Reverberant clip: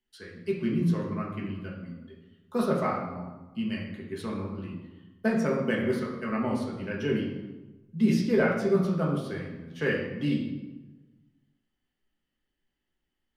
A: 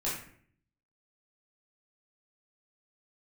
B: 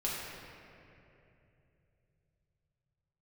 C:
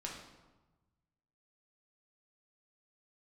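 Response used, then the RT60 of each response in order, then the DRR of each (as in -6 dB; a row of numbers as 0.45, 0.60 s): C; 0.55, 2.9, 1.2 s; -8.5, -6.0, -2.5 dB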